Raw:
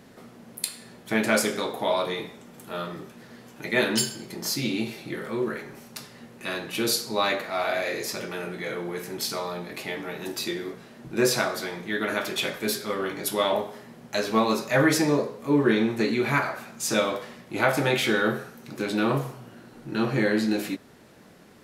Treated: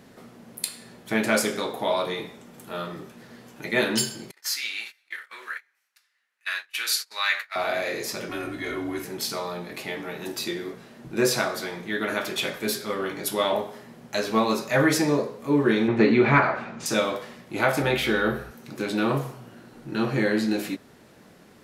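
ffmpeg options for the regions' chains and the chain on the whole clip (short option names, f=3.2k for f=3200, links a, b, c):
-filter_complex "[0:a]asettb=1/sr,asplit=3[a][b][c];[a]atrim=end=4.314[d];[b]atrim=start=4.31:end=7.56,asetpts=PTS-STARTPTS,afade=t=in:d=0.004:c=qsin,afade=t=out:st=3.246:d=0.004:c=qsin,agate=range=-25dB:threshold=-34dB:ratio=16:release=100:detection=peak,highpass=f=1.7k:t=q:w=2[e];[c]atrim=start=7.556[f];[d][e]acrossfade=d=0.004:c1=hsin:c2=qsin[g];[g][f]acrossfade=d=0.004:c1=qsin:c2=hsin,asettb=1/sr,asplit=3[h][i][j];[h]atrim=end=8.294[k];[i]atrim=start=8.29:end=9.05,asetpts=PTS-STARTPTS,afade=t=in:d=0.004:c=qsin,afade=t=out:st=0.756:d=0.004:c=qsin,aecho=1:1:2.7:0.49,atrim=end_sample=33516,afreqshift=-66[l];[j]atrim=start=9.046[m];[k][l]acrossfade=d=0.004:c1=hsin:c2=qsin[n];[n][m]acrossfade=d=0.004:c1=qsin:c2=hsin,asettb=1/sr,asplit=3[o][p][q];[o]atrim=end=15.884[r];[p]atrim=start=15.88:end=16.86,asetpts=PTS-STARTPTS,afade=t=in:d=0.004:c=qsin,afade=t=out:st=0.976:d=0.004:c=qsin,acontrast=71,lowpass=2.6k,bandreject=f=1.6k:w=26[s];[q]atrim=start=16.856[t];[r][s]acrossfade=d=0.004:c1=hsin:c2=qsin[u];[u][t]acrossfade=d=0.004:c1=qsin:c2=hsin,asettb=1/sr,asplit=3[v][w][x];[v]atrim=end=17.824[y];[w]atrim=start=17.82:end=18.51,asetpts=PTS-STARTPTS,afade=t=in:d=0.004:c=qsin,afade=t=out:st=0.686:d=0.004:c=qsin,equalizer=f=7.2k:t=o:w=0.99:g=-6,aeval=exprs='val(0)+0.00708*(sin(2*PI*60*n/s)+sin(2*PI*2*60*n/s)/2+sin(2*PI*3*60*n/s)/3+sin(2*PI*4*60*n/s)/4+sin(2*PI*5*60*n/s)/5)':c=same[z];[x]atrim=start=18.506[aa];[y][z]acrossfade=d=0.004:c1=hsin:c2=qsin[ab];[ab][aa]acrossfade=d=0.004:c1=qsin:c2=hsin"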